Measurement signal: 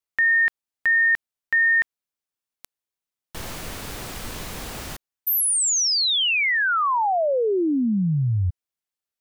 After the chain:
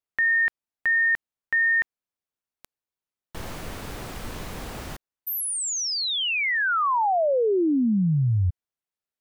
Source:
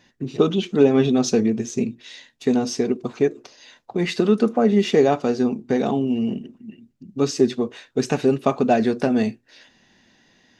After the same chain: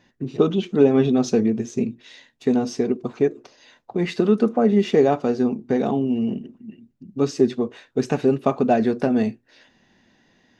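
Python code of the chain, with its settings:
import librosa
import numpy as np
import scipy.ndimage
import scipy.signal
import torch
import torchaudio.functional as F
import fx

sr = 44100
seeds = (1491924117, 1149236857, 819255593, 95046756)

y = fx.high_shelf(x, sr, hz=2400.0, db=-7.5)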